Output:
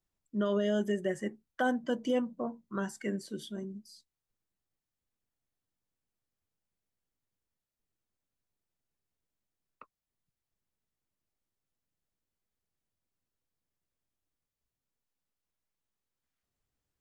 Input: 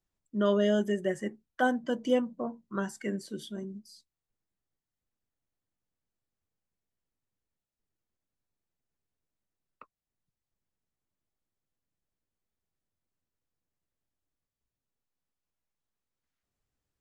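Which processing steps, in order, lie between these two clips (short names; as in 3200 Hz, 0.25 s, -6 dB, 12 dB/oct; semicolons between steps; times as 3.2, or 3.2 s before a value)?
limiter -20 dBFS, peak gain reduction 6 dB; gain -1 dB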